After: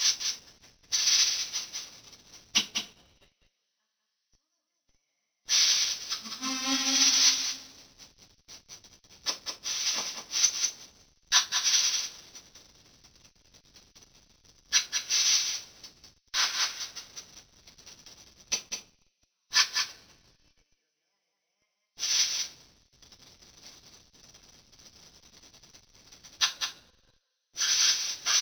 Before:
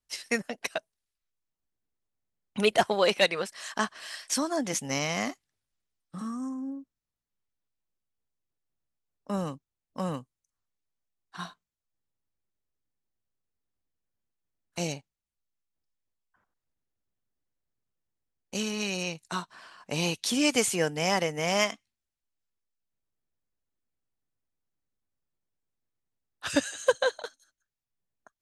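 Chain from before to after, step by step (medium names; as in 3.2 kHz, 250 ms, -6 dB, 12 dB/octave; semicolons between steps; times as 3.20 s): zero-crossing glitches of -20 dBFS; brick-wall FIR low-pass 6.2 kHz; inverted gate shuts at -27 dBFS, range -35 dB; tilt EQ +3.5 dB/octave; on a send: delay 200 ms -3 dB; on the sum: two-slope reverb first 0.36 s, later 3.2 s, from -17 dB, DRR -5.5 dB; in parallel at -9.5 dB: Schmitt trigger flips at -38.5 dBFS; on the sum: upward expansion 2.5:1, over -47 dBFS; trim +6 dB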